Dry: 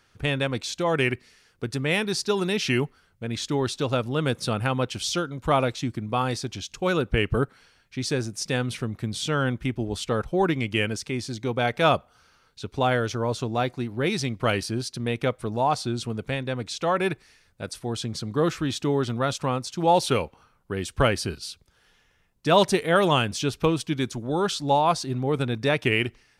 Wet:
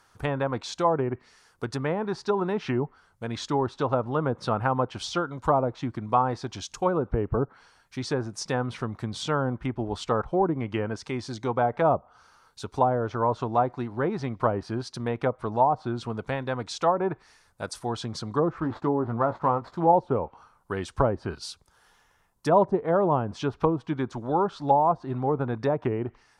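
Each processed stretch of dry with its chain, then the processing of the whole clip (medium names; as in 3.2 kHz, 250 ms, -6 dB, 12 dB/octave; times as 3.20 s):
18.60–19.93 s: median filter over 15 samples + treble shelf 4.8 kHz -7 dB + doubling 18 ms -10 dB
whole clip: low-pass that closes with the level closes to 600 Hz, closed at -18.5 dBFS; FFT filter 190 Hz 0 dB, 520 Hz +3 dB, 960 Hz +12 dB, 2.5 kHz -2 dB, 9.5 kHz +8 dB; trim -3 dB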